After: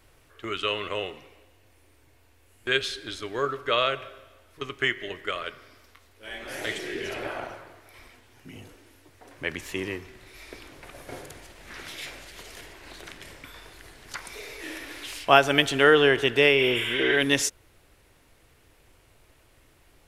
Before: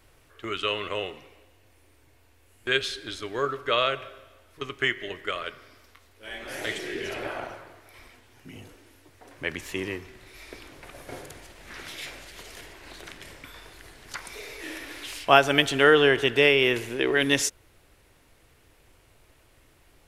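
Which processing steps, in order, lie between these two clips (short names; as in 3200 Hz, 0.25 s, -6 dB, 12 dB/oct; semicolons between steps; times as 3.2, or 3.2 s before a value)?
spectral repair 16.61–17.14, 890–6800 Hz both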